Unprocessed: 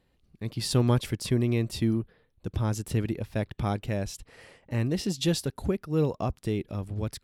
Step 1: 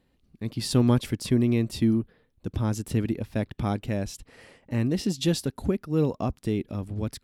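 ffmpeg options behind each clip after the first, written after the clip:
ffmpeg -i in.wav -af "equalizer=frequency=250:width=2.2:gain=6" out.wav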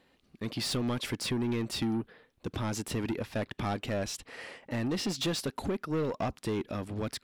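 ffmpeg -i in.wav -filter_complex "[0:a]acompressor=threshold=-23dB:ratio=6,asplit=2[link_01][link_02];[link_02]highpass=frequency=720:poles=1,volume=20dB,asoftclip=type=tanh:threshold=-18dB[link_03];[link_01][link_03]amix=inputs=2:normalize=0,lowpass=frequency=4300:poles=1,volume=-6dB,volume=-5dB" out.wav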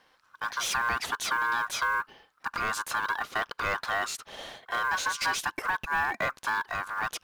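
ffmpeg -i in.wav -af "aeval=exprs='val(0)*sin(2*PI*1300*n/s)':channel_layout=same,acrusher=bits=7:mode=log:mix=0:aa=0.000001,volume=5.5dB" out.wav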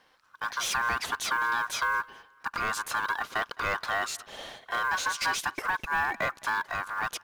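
ffmpeg -i in.wav -af "aecho=1:1:212|424:0.0631|0.0227" out.wav

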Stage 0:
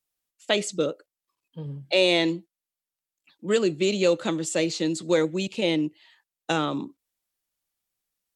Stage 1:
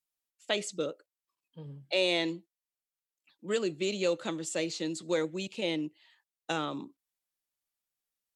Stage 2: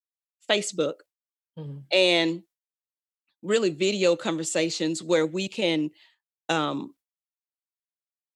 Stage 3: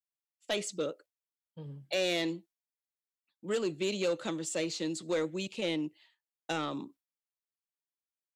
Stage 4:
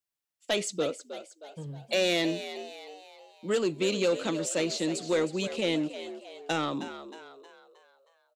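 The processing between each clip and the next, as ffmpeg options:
ffmpeg -i in.wav -af "lowshelf=frequency=350:gain=-4,volume=-6.5dB" out.wav
ffmpeg -i in.wav -af "agate=range=-33dB:threshold=-54dB:ratio=3:detection=peak,volume=7.5dB" out.wav
ffmpeg -i in.wav -af "asoftclip=type=tanh:threshold=-16.5dB,volume=-7dB" out.wav
ffmpeg -i in.wav -filter_complex "[0:a]asplit=6[link_01][link_02][link_03][link_04][link_05][link_06];[link_02]adelay=314,afreqshift=66,volume=-12dB[link_07];[link_03]adelay=628,afreqshift=132,volume=-18.7dB[link_08];[link_04]adelay=942,afreqshift=198,volume=-25.5dB[link_09];[link_05]adelay=1256,afreqshift=264,volume=-32.2dB[link_10];[link_06]adelay=1570,afreqshift=330,volume=-39dB[link_11];[link_01][link_07][link_08][link_09][link_10][link_11]amix=inputs=6:normalize=0,volume=4.5dB" out.wav

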